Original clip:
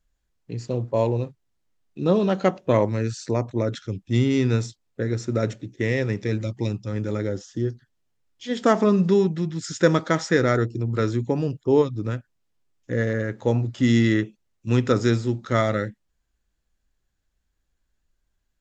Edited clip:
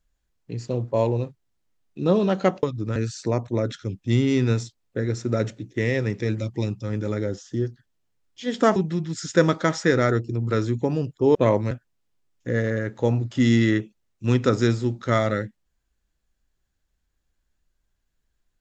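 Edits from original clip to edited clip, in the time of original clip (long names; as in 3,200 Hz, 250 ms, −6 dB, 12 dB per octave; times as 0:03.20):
0:02.63–0:02.99: swap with 0:11.81–0:12.14
0:08.79–0:09.22: remove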